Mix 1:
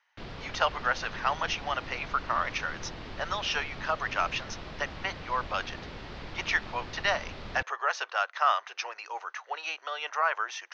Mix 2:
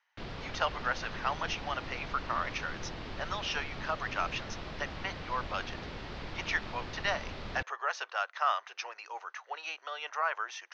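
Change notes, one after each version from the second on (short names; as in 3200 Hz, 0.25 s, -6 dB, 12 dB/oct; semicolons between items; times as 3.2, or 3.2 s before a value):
speech -4.5 dB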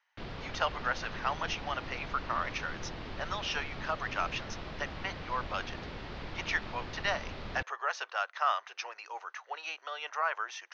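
background: add air absorption 52 m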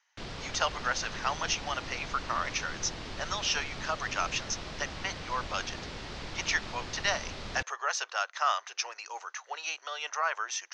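master: remove air absorption 220 m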